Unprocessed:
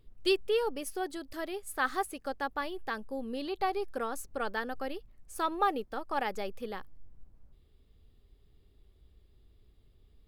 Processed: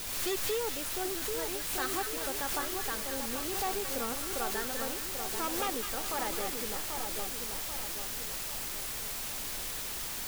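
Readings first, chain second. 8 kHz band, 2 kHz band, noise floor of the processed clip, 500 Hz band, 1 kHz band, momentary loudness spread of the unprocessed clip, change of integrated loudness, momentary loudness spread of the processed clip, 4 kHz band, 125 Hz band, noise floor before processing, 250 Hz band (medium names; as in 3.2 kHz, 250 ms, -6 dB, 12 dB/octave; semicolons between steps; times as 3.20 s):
+15.0 dB, 0.0 dB, -38 dBFS, -2.5 dB, -3.0 dB, 10 LU, +1.0 dB, 3 LU, +5.5 dB, no reading, -63 dBFS, -1.5 dB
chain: added noise brown -47 dBFS; word length cut 6-bit, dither triangular; wavefolder -23 dBFS; two-band feedback delay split 1.3 kHz, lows 787 ms, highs 206 ms, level -5 dB; swell ahead of each attack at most 34 dB/s; trim -3.5 dB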